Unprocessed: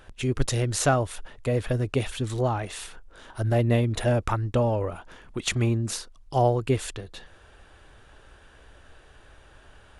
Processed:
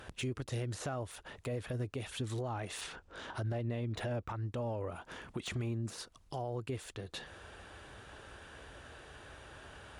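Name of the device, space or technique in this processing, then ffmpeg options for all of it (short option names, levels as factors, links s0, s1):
podcast mastering chain: -filter_complex "[0:a]asettb=1/sr,asplit=3[s0][s1][s2];[s0]atrim=end=2.814[s3];[s1]atrim=start=2.81:end=4.48,asetpts=PTS-STARTPTS,afade=t=in:d=0.004:c=qsin,afade=t=out:st=1.666:d=0.004:c=qsin,lowpass=6500[s4];[s2]atrim=start=4.476[s5];[s3][s4]acrossfade=d=0.004:c1=hsin:c2=qsin[s6];[s6][s5]acrossfade=d=0.004:c1=qsin:c2=hsin,highpass=70,deesser=0.8,acompressor=threshold=0.00794:ratio=2.5,alimiter=level_in=2.37:limit=0.0631:level=0:latency=1:release=61,volume=0.422,volume=1.41" -ar 44100 -c:a libmp3lame -b:a 112k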